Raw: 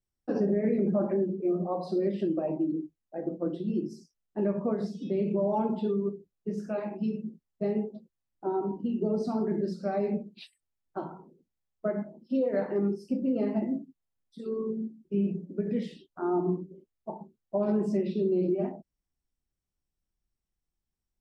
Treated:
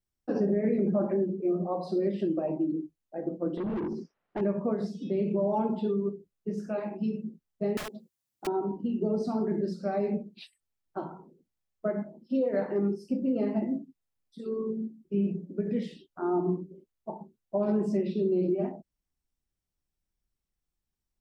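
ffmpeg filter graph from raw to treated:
ffmpeg -i in.wav -filter_complex "[0:a]asettb=1/sr,asplit=3[link_01][link_02][link_03];[link_01]atrim=end=3.574[link_04];[link_02]atrim=start=3.57:end=4.41,asetpts=PTS-STARTPTS,afade=type=in:duration=0.004:curve=qsin,afade=type=out:start_time=0.836:duration=0.004:curve=qsin,lowpass=2100,asplit=2[link_05][link_06];[link_06]highpass=frequency=720:poles=1,volume=30dB,asoftclip=type=tanh:threshold=-18.5dB[link_07];[link_05][link_07]amix=inputs=2:normalize=0,lowpass=frequency=1400:poles=1,volume=-6dB,acompressor=threshold=-31dB:ratio=3:attack=3.2:release=140:knee=1:detection=peak[link_08];[link_03]atrim=start=4.406[link_09];[link_04][link_08]acrossfade=duration=0.004:curve1=hsin:curve2=qsin[link_10];[link_10][link_09]acrossfade=duration=0.004:curve1=qsin:curve2=hsin,asettb=1/sr,asplit=3[link_11][link_12][link_13];[link_11]atrim=end=7.774[link_14];[link_12]atrim=start=7.77:end=8.47,asetpts=PTS-STARTPTS,afade=type=in:duration=0.004:curve=qsin,afade=type=out:start_time=0.696:duration=0.004:curve=qsin,highpass=92,highshelf=frequency=3800:gain=10.5,aeval=exprs='(mod(42.2*val(0)+1,2)-1)/42.2':channel_layout=same[link_15];[link_13]atrim=start=8.466[link_16];[link_14][link_15]acrossfade=duration=0.004:curve1=hsin:curve2=qsin[link_17];[link_17][link_16]acrossfade=duration=0.004:curve1=qsin:curve2=hsin" out.wav

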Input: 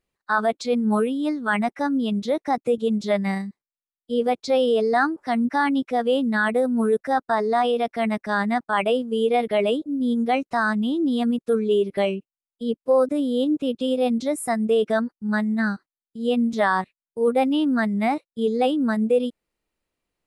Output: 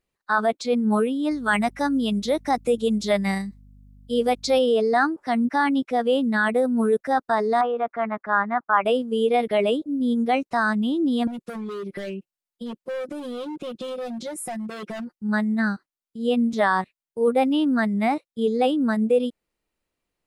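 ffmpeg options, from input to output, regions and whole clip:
ffmpeg -i in.wav -filter_complex "[0:a]asettb=1/sr,asplit=3[link_01][link_02][link_03];[link_01]atrim=end=1.314[link_04];[link_02]atrim=start=1.31:end=4.59,asetpts=PTS-STARTPTS,afade=type=in:duration=0.004:curve=qsin,afade=type=out:start_time=3.276:duration=0.004:curve=qsin,highshelf=frequency=3600:gain=9.5,aeval=exprs='val(0)+0.00398*(sin(2*PI*50*n/s)+sin(2*PI*2*50*n/s)/2+sin(2*PI*3*50*n/s)/3+sin(2*PI*4*50*n/s)/4+sin(2*PI*5*50*n/s)/5)':channel_layout=same[link_05];[link_03]atrim=start=4.586[link_06];[link_04][link_05]acrossfade=duration=0.004:curve1=hsin:curve2=qsin[link_07];[link_07][link_06]acrossfade=duration=0.004:curve1=qsin:curve2=hsin,asettb=1/sr,asplit=3[link_08][link_09][link_10];[link_08]atrim=end=7.614[link_11];[link_09]atrim=start=7.61:end=8.85,asetpts=PTS-STARTPTS,afade=type=in:duration=0.004:curve=qsin,afade=type=out:start_time=1.236:duration=0.004:curve=qsin,lowpass=frequency=1300:width_type=q:width=2.4,lowshelf=frequency=460:gain=-9.5[link_12];[link_10]atrim=start=8.846[link_13];[link_11][link_12]acrossfade=duration=0.004:curve1=hsin:curve2=qsin[link_14];[link_14][link_13]acrossfade=duration=0.004:curve1=qsin:curve2=hsin,asettb=1/sr,asplit=3[link_15][link_16][link_17];[link_15]atrim=end=11.274[link_18];[link_16]atrim=start=11.27:end=15.15,asetpts=PTS-STARTPTS,afade=type=in:duration=0.004:curve=qsin,afade=type=out:start_time=3.876:duration=0.004:curve=qsin,asoftclip=type=hard:threshold=-21dB,aecho=1:1:5.6:0.86,atrim=end_sample=171108,acompressor=threshold=-29dB:ratio=6:attack=3.2:release=140:knee=1:detection=peak[link_19];[link_17]atrim=start=15.146[link_20];[link_18][link_19]acrossfade=duration=0.004:curve1=hsin:curve2=qsin[link_21];[link_21][link_20]acrossfade=duration=0.004:curve1=qsin:curve2=hsin" out.wav

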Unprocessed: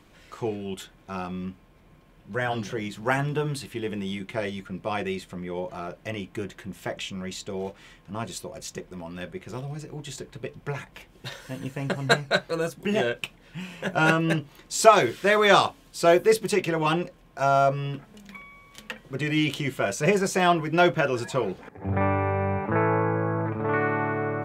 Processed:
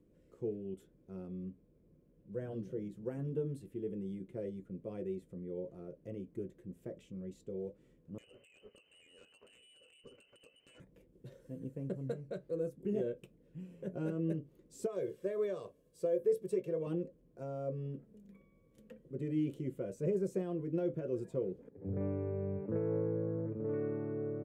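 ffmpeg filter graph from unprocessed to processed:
ffmpeg -i in.wav -filter_complex "[0:a]asettb=1/sr,asplit=3[link_01][link_02][link_03];[link_01]atrim=end=8.184[link_04];[link_02]atrim=start=8.18:end=10.8,asetpts=PTS-STARTPTS,afade=type=in:duration=0.004:curve=qsin,afade=type=out:start_time=2.616:duration=0.004:curve=qsin,lowpass=frequency=2600:width_type=q:width=0.5098,lowpass=frequency=2600:width_type=q:width=0.6013,lowpass=frequency=2600:width_type=q:width=0.9,lowpass=frequency=2600:width_type=q:width=2.563,afreqshift=-3100,acompressor=threshold=-40dB:ratio=6:attack=3.2:release=140:knee=1:detection=peak,aeval=exprs='0.0355*sin(PI/2*2.82*val(0)/0.0355)':channel_layout=same[link_05];[link_03]atrim=start=10.796[link_06];[link_04][link_05]acrossfade=duration=0.004:curve1=hsin:curve2=qsin[link_07];[link_07][link_06]acrossfade=duration=0.004:curve1=qsin:curve2=hsin,asettb=1/sr,asplit=3[link_08][link_09][link_10];[link_08]atrim=end=14.864[link_11];[link_09]atrim=start=14.86:end=16.87,asetpts=PTS-STARTPTS,afade=type=in:duration=0.004:curve=qsin,afade=type=out:start_time=2.006:duration=0.004:curve=qsin,lowshelf=frequency=140:gain=-11.5,aecho=1:1:1.8:0.58,atrim=end_sample=88641[link_12];[link_10]atrim=start=16.866[link_13];[link_11][link_12]acrossfade=duration=0.004:curve1=hsin:curve2=qsin[link_14];[link_14][link_13]acrossfade=duration=0.004:curve1=qsin:curve2=hsin,lowshelf=frequency=120:gain=-7,alimiter=limit=-13.5dB:level=0:latency=1:release=129,firequalizer=gain_entry='entry(510,0);entry(750,-22);entry(3900,-26);entry(9000,-16)':delay=0.05:min_phase=1,volume=-7.5dB" out.wav

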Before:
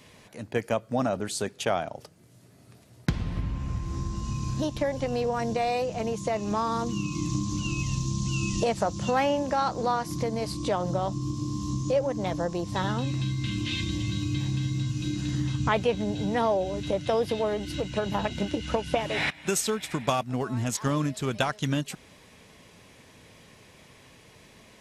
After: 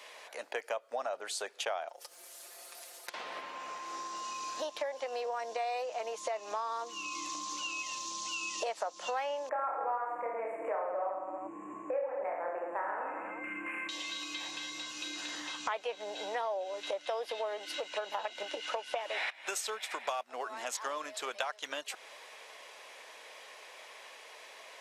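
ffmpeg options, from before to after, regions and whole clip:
ffmpeg -i in.wav -filter_complex "[0:a]asettb=1/sr,asplit=3[link_01][link_02][link_03];[link_01]atrim=end=1.884[link_04];[link_02]atrim=start=1.88:end=3.14,asetpts=PTS-STARTPTS,afade=type=in:duration=0.004:curve=qsin,afade=type=out:start_time=1.256:duration=0.004:curve=qsin,aemphasis=mode=production:type=75kf,acompressor=threshold=-46dB:ratio=4:attack=3.2:release=140:knee=1:detection=peak,aecho=1:1:5.7:0.88,atrim=end_sample=55566[link_05];[link_03]atrim=start=3.136[link_06];[link_04][link_05]acrossfade=duration=0.004:curve1=hsin:curve2=qsin[link_07];[link_07][link_06]acrossfade=duration=0.004:curve1=qsin:curve2=hsin,asettb=1/sr,asplit=3[link_08][link_09][link_10];[link_08]atrim=end=9.494[link_11];[link_09]atrim=start=9.49:end=13.89,asetpts=PTS-STARTPTS,afade=type=in:duration=0.004:curve=qsin,afade=type=out:start_time=4.396:duration=0.004:curve=qsin,adynamicsmooth=sensitivity=1:basefreq=2300,asuperstop=centerf=4400:order=12:qfactor=0.87,aecho=1:1:30|66|109.2|161|223.2|297.9|387.5:0.794|0.631|0.501|0.398|0.316|0.251|0.2,atrim=end_sample=194040[link_12];[link_10]atrim=start=13.886[link_13];[link_11][link_12]acrossfade=duration=0.004:curve1=hsin:curve2=qsin[link_14];[link_14][link_13]acrossfade=duration=0.004:curve1=qsin:curve2=hsin,highpass=frequency=550:width=0.5412,highpass=frequency=550:width=1.3066,highshelf=frequency=5100:gain=-7,acompressor=threshold=-43dB:ratio=3,volume=6dB" out.wav

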